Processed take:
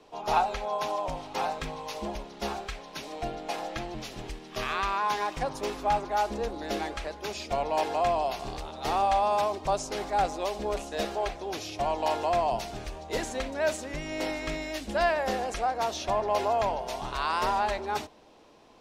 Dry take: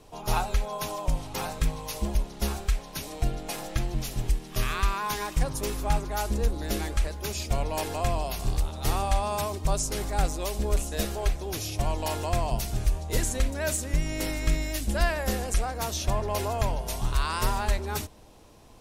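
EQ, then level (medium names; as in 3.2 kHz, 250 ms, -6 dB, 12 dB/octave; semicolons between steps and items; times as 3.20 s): three-band isolator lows -16 dB, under 210 Hz, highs -17 dB, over 5.6 kHz; dynamic bell 760 Hz, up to +7 dB, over -45 dBFS, Q 1.8; 0.0 dB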